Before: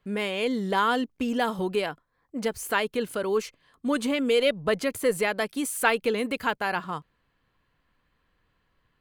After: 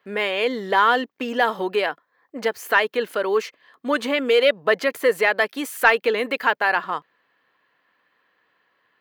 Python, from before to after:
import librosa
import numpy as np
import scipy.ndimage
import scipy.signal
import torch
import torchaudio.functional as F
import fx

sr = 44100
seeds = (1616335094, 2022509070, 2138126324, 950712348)

y = scipy.signal.sosfilt(scipy.signal.butter(2, 410.0, 'highpass', fs=sr, output='sos'), x)
y = fx.peak_eq(y, sr, hz=1800.0, db=5.5, octaves=0.26)
y = 10.0 ** (-10.0 / 20.0) * np.tanh(y / 10.0 ** (-10.0 / 20.0))
y = fx.peak_eq(y, sr, hz=9100.0, db=-13.0, octaves=1.1)
y = F.gain(torch.from_numpy(y), 7.5).numpy()